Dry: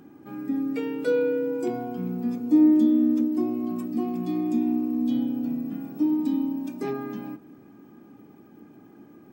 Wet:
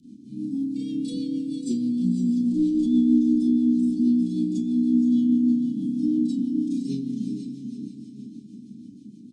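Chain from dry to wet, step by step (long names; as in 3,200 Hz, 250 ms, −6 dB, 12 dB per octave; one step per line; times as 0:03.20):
asymmetric clip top −17 dBFS
elliptic band-stop filter 250–3,800 Hz, stop band 50 dB
brickwall limiter −25 dBFS, peak gain reduction 8 dB
0:02.12–0:02.99: parametric band 920 Hz +14.5 dB 0.55 octaves
downward compressor, threshold −30 dBFS, peak gain reduction 3.5 dB
four-comb reverb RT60 0.33 s, combs from 29 ms, DRR −10 dB
downsampling to 22,050 Hz
on a send: feedback delay with all-pass diffusion 508 ms, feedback 49%, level −7 dB
on the sum: rotating-speaker cabinet horn 6.3 Hz
low-shelf EQ 120 Hz −6.5 dB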